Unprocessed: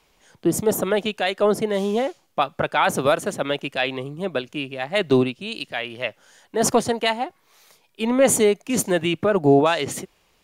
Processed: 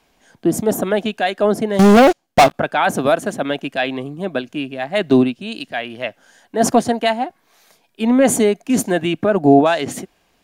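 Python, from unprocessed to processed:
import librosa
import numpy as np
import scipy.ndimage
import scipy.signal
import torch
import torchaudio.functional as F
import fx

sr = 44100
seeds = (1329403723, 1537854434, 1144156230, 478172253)

y = fx.small_body(x, sr, hz=(250.0, 690.0, 1600.0), ring_ms=25, db=8)
y = fx.leveller(y, sr, passes=5, at=(1.79, 2.54))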